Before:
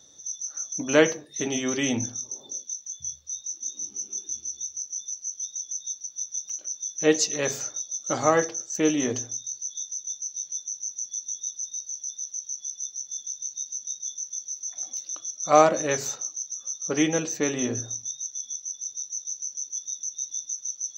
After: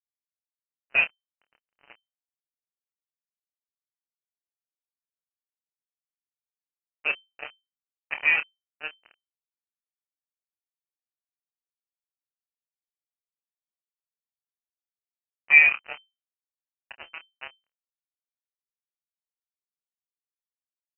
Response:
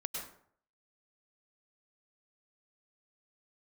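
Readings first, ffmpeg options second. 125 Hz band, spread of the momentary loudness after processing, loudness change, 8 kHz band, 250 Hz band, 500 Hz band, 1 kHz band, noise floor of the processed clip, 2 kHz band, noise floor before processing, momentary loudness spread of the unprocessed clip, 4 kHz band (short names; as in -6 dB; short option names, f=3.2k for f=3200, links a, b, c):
under -25 dB, 24 LU, +7.0 dB, under -40 dB, under -30 dB, -24.5 dB, -16.5 dB, under -85 dBFS, +9.0 dB, -50 dBFS, 10 LU, -8.0 dB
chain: -filter_complex "[0:a]asplit=3[a][b][c];[a]bandpass=f=730:t=q:w=8,volume=0dB[d];[b]bandpass=f=1.09k:t=q:w=8,volume=-6dB[e];[c]bandpass=f=2.44k:t=q:w=8,volume=-9dB[f];[d][e][f]amix=inputs=3:normalize=0,acrusher=bits=4:mix=0:aa=0.5,asplit=2[g][h];[1:a]atrim=start_sample=2205,atrim=end_sample=3528,adelay=28[i];[h][i]afir=irnorm=-1:irlink=0,volume=-8dB[j];[g][j]amix=inputs=2:normalize=0,lowpass=f=2.6k:t=q:w=0.5098,lowpass=f=2.6k:t=q:w=0.6013,lowpass=f=2.6k:t=q:w=0.9,lowpass=f=2.6k:t=q:w=2.563,afreqshift=-3100,volume=6.5dB"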